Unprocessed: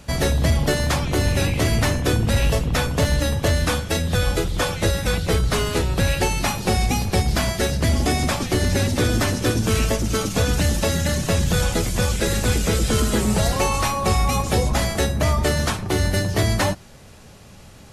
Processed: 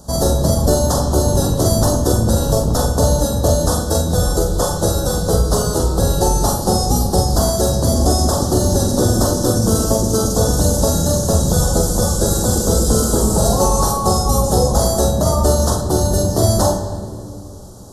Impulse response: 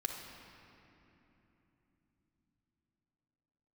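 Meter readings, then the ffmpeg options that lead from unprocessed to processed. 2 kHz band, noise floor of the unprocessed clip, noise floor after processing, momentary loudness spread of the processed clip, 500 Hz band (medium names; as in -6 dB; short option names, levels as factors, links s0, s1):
-9.5 dB, -44 dBFS, -29 dBFS, 3 LU, +7.0 dB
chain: -filter_complex "[0:a]lowshelf=f=340:g=-6,acontrast=27,asuperstop=centerf=2300:order=4:qfactor=0.53,asplit=2[s0][s1];[1:a]atrim=start_sample=2205,asetrate=70560,aresample=44100,adelay=44[s2];[s1][s2]afir=irnorm=-1:irlink=0,volume=1.06[s3];[s0][s3]amix=inputs=2:normalize=0,volume=1.26"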